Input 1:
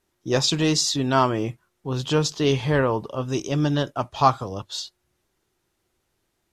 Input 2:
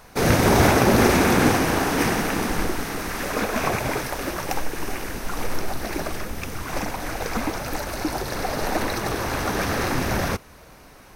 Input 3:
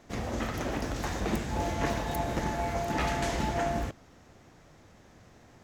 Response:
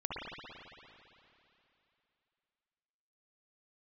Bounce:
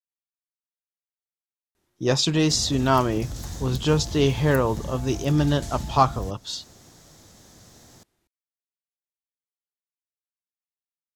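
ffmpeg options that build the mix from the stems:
-filter_complex "[0:a]adelay=1750,volume=-1dB[link_01];[2:a]acrossover=split=160[link_02][link_03];[link_03]acompressor=threshold=-47dB:ratio=4[link_04];[link_02][link_04]amix=inputs=2:normalize=0,aexciter=amount=3.6:drive=7:freq=3500,adelay=2400,volume=1.5dB[link_05];[link_01][link_05]amix=inputs=2:normalize=0,equalizer=frequency=150:width=0.52:gain=2.5"

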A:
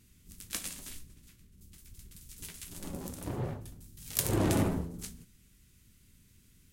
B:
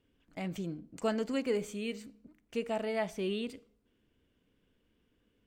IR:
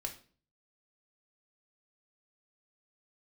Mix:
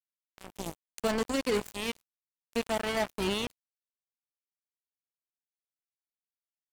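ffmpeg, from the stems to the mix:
-filter_complex "[0:a]acompressor=threshold=-35dB:ratio=6,asoftclip=type=tanh:threshold=-37dB,volume=-3.5dB,asplit=2[link_01][link_02];[link_02]volume=-9dB[link_03];[1:a]aemphasis=mode=production:type=cd,dynaudnorm=framelen=110:gausssize=9:maxgain=9dB,aeval=exprs='val(0)+0.00708*(sin(2*PI*60*n/s)+sin(2*PI*2*60*n/s)/2+sin(2*PI*3*60*n/s)/3+sin(2*PI*4*60*n/s)/4+sin(2*PI*5*60*n/s)/5)':channel_layout=same,volume=-1.5dB[link_04];[2:a]atrim=start_sample=2205[link_05];[link_03][link_05]afir=irnorm=-1:irlink=0[link_06];[link_01][link_04][link_06]amix=inputs=3:normalize=0,acrusher=bits=3:mix=0:aa=0.5,alimiter=limit=-21.5dB:level=0:latency=1:release=30"

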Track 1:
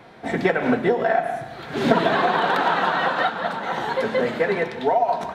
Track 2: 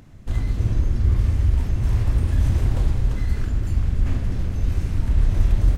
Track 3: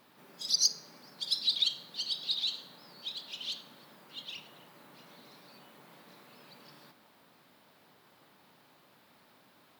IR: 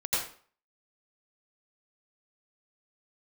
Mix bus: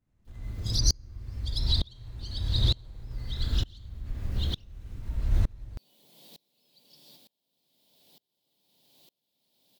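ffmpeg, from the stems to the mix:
-filter_complex "[1:a]volume=-3.5dB,asplit=2[link_01][link_02];[link_02]volume=-9.5dB[link_03];[2:a]firequalizer=gain_entry='entry(640,0);entry(1300,-18);entry(3300,10)':delay=0.05:min_phase=1,adelay=250,volume=2.5dB[link_04];[link_01][link_04]amix=inputs=2:normalize=0,agate=range=-33dB:threshold=-53dB:ratio=3:detection=peak,acompressor=threshold=-23dB:ratio=6,volume=0dB[link_05];[3:a]atrim=start_sample=2205[link_06];[link_03][link_06]afir=irnorm=-1:irlink=0[link_07];[link_05][link_07]amix=inputs=2:normalize=0,aeval=exprs='val(0)*pow(10,-30*if(lt(mod(-1.1*n/s,1),2*abs(-1.1)/1000),1-mod(-1.1*n/s,1)/(2*abs(-1.1)/1000),(mod(-1.1*n/s,1)-2*abs(-1.1)/1000)/(1-2*abs(-1.1)/1000))/20)':channel_layout=same"

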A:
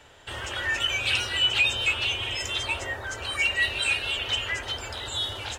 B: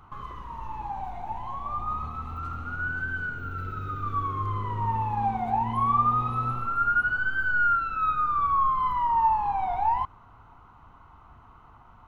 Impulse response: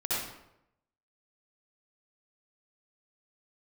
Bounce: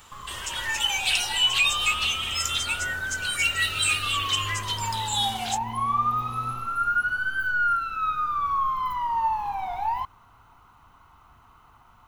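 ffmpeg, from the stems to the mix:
-filter_complex "[0:a]volume=-8.5dB[link_01];[1:a]volume=-5dB[link_02];[link_01][link_02]amix=inputs=2:normalize=0,crystalizer=i=6.5:c=0"

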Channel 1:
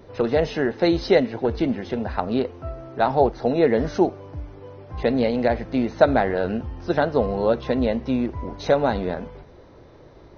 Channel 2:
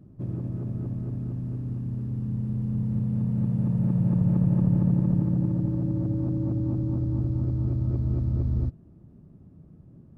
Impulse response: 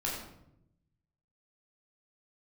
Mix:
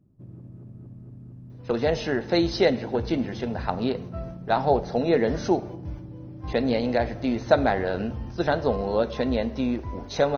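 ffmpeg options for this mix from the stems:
-filter_complex "[0:a]agate=range=-10dB:threshold=-36dB:ratio=16:detection=peak,aemphasis=mode=production:type=50kf,adelay=1500,volume=-4dB,asplit=2[link_01][link_02];[link_02]volume=-18dB[link_03];[1:a]acompressor=threshold=-24dB:ratio=6,volume=-12dB[link_04];[2:a]atrim=start_sample=2205[link_05];[link_03][link_05]afir=irnorm=-1:irlink=0[link_06];[link_01][link_04][link_06]amix=inputs=3:normalize=0"

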